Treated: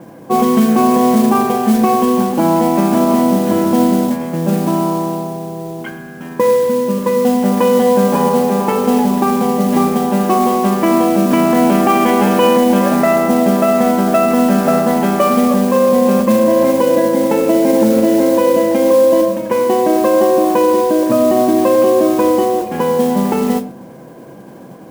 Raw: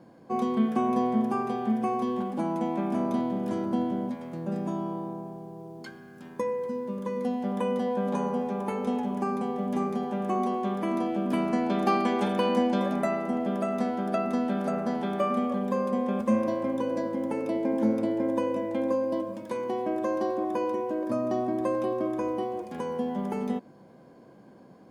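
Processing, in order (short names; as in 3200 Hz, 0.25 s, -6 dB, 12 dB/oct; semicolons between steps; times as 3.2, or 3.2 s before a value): Chebyshev low-pass 3200 Hz, order 8; modulation noise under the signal 19 dB; reverb RT60 0.55 s, pre-delay 6 ms, DRR 10.5 dB; maximiser +18.5 dB; gain -2 dB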